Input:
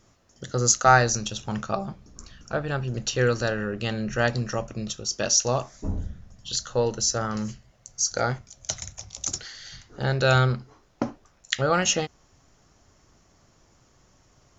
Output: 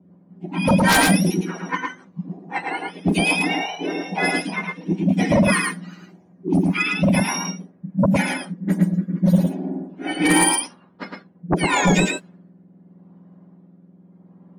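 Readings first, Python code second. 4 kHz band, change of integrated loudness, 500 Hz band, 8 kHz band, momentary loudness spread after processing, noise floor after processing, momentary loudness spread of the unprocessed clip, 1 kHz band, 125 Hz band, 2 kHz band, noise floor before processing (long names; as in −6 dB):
+2.0 dB, +5.0 dB, +1.0 dB, can't be measured, 18 LU, −53 dBFS, 15 LU, +2.5 dB, +4.5 dB, +7.0 dB, −61 dBFS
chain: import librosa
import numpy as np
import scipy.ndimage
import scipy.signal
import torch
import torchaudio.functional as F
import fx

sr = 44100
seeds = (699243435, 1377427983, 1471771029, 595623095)

p1 = fx.octave_mirror(x, sr, pivot_hz=1100.0)
p2 = fx.env_lowpass(p1, sr, base_hz=710.0, full_db=-18.5)
p3 = fx.rotary_switch(p2, sr, hz=5.0, then_hz=0.8, switch_at_s=8.11)
p4 = fx.notch_comb(p3, sr, f0_hz=220.0)
p5 = fx.fold_sine(p4, sr, drive_db=12, ceiling_db=-7.0)
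p6 = p5 + fx.echo_single(p5, sr, ms=109, db=-3.0, dry=0)
y = p6 * librosa.db_to_amplitude(-5.0)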